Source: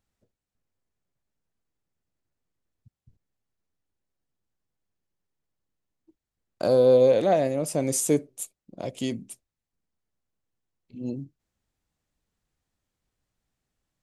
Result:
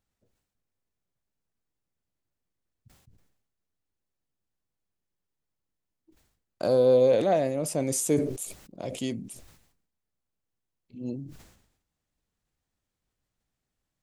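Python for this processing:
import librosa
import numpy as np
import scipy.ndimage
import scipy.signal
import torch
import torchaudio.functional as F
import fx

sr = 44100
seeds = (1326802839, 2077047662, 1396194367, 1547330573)

y = fx.sustainer(x, sr, db_per_s=71.0)
y = y * 10.0 ** (-2.5 / 20.0)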